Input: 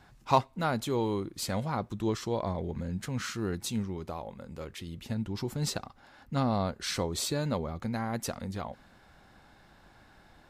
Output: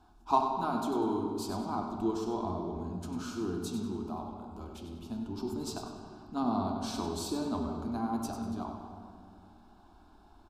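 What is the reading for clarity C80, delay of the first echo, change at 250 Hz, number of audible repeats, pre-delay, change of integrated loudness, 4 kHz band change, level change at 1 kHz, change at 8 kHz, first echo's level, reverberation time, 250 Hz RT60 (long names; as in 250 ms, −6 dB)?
4.0 dB, 97 ms, +0.5 dB, 1, 3 ms, −2.0 dB, −7.0 dB, +0.5 dB, −7.0 dB, −10.0 dB, 2.2 s, 2.6 s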